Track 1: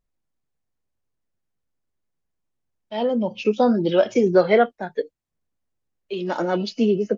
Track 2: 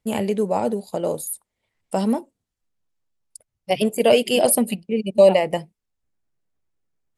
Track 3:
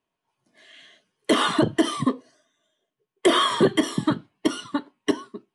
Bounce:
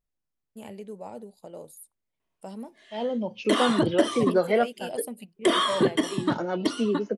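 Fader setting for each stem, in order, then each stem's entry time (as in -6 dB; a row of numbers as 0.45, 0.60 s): -6.5, -18.0, -3.5 dB; 0.00, 0.50, 2.20 s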